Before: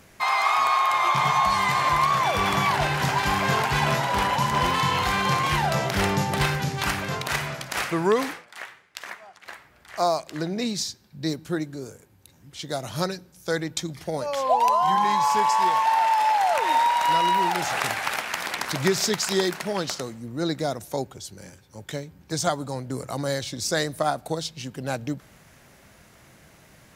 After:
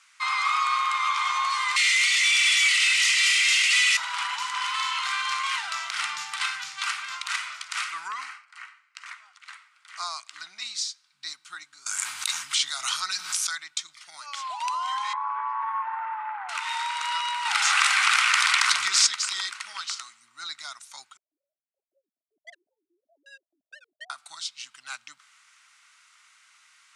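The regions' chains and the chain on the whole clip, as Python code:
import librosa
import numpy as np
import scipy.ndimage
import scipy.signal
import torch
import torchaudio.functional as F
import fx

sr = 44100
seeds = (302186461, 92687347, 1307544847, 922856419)

y = fx.chain(x, sr, fx.cheby_ripple_highpass(hz=1900.0, ripple_db=3),
    fx.leveller(passes=5), at=(1.76, 3.97))
y = fx.chain(y, sr, fx.high_shelf(hz=3400.0, db=-8.5),
    fx.notch(hz=3500.0, q=5.7), at=(8.08, 9.06))
y = fx.chain(y, sr, fx.high_shelf(hz=11000.0, db=5.5),
    fx.env_flatten(amount_pct=100), at=(11.86, 13.55))
y = fx.chain(y, sr, fx.lowpass(hz=1600.0, slope=24),
    fx.low_shelf_res(hz=300.0, db=-13.0, q=3.0), at=(15.13, 16.49))
y = fx.chain(y, sr, fx.leveller(passes=1),
    fx.env_flatten(amount_pct=70), at=(17.45, 19.07))
y = fx.chain(y, sr, fx.sine_speech(),
    fx.steep_lowpass(hz=660.0, slope=96),
    fx.clip_hard(threshold_db=-25.0), at=(21.17, 24.1))
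y = scipy.signal.sosfilt(scipy.signal.ellip(3, 1.0, 40, [1200.0, 9100.0], 'bandpass', fs=sr, output='sos'), y)
y = fx.notch(y, sr, hz=1700.0, q=8.3)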